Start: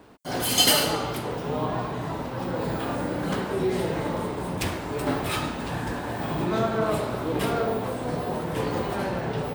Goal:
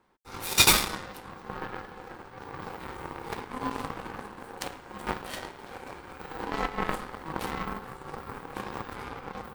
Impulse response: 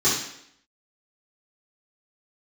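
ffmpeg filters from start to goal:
-af "aeval=exprs='0.562*(cos(1*acos(clip(val(0)/0.562,-1,1)))-cos(1*PI/2))+0.0708*(cos(7*acos(clip(val(0)/0.562,-1,1)))-cos(7*PI/2))':channel_layout=same,aeval=exprs='val(0)*sin(2*PI*640*n/s)':channel_layout=same,volume=4.5dB"

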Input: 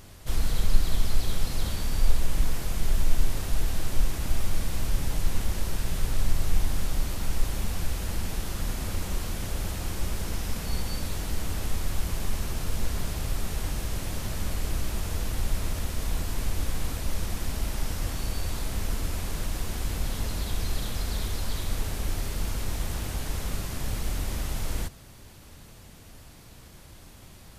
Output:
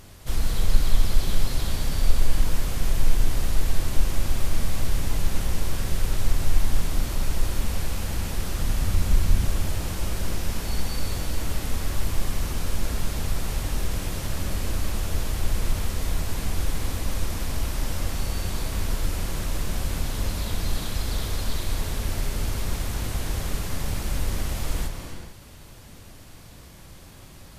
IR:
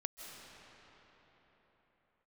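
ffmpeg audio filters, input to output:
-filter_complex "[0:a]asettb=1/sr,asplit=3[link_01][link_02][link_03];[link_01]atrim=end=8.414[link_04];[link_02]atrim=start=8.41:end=9.45,asetpts=PTS-STARTPTS,afade=type=in:duration=0.004:curve=qsin,afade=type=out:start_time=1.036:duration=0.004:curve=qsin,asubboost=boost=7:cutoff=220[link_05];[link_03]atrim=start=9.446[link_06];[link_04][link_05]acrossfade=duration=0.004:curve1=hsin:curve2=qsin[link_07];[link_07][link_06]acrossfade=duration=0.004:curve1=qsin:curve2=hsin[link_08];[1:a]atrim=start_sample=2205,afade=type=out:start_time=0.44:duration=0.01,atrim=end_sample=19845,asetrate=37926,aresample=44100[link_09];[link_08][link_09]afir=irnorm=-1:irlink=0,volume=4dB"

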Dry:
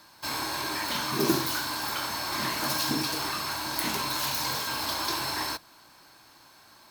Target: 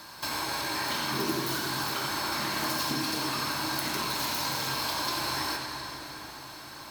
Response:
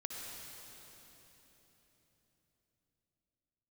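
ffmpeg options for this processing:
-filter_complex "[0:a]acompressor=threshold=-42dB:ratio=3,asplit=2[link_01][link_02];[1:a]atrim=start_sample=2205,highshelf=frequency=11000:gain=-11.5,adelay=89[link_03];[link_02][link_03]afir=irnorm=-1:irlink=0,volume=-0.5dB[link_04];[link_01][link_04]amix=inputs=2:normalize=0,volume=8dB"

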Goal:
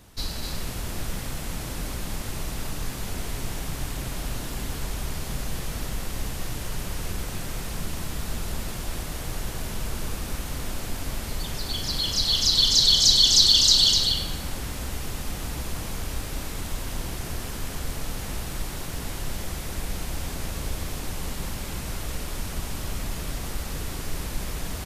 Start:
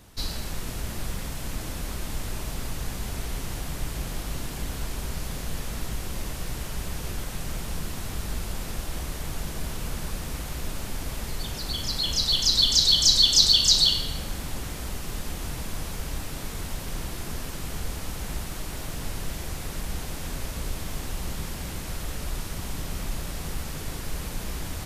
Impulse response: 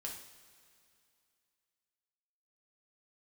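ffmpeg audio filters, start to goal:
-af "aecho=1:1:186.6|250.7:0.316|0.562"

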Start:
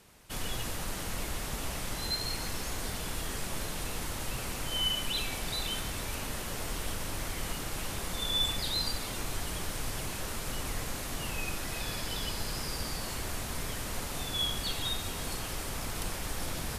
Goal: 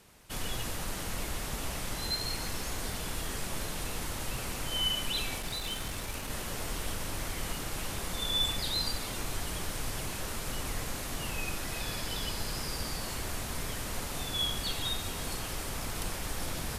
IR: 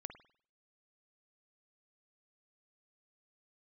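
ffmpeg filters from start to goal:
-filter_complex "[0:a]asettb=1/sr,asplit=3[link_01][link_02][link_03];[link_01]atrim=end=5.384[link_04];[link_02]atrim=start=5.38:end=6.3,asetpts=PTS-STARTPTS,afade=type=in:duration=0.004:curve=qsin,afade=type=out:start_time=0.916:duration=0.004:curve=qsin,aeval=exprs='(tanh(20*val(0)+0.4)-tanh(0.4))/20':channel_layout=same[link_05];[link_03]atrim=start=6.296[link_06];[link_04][link_05]acrossfade=duration=0.004:curve1=hsin:curve2=qsin[link_07];[link_07][link_06]acrossfade=duration=0.004:curve1=qsin:curve2=hsin"

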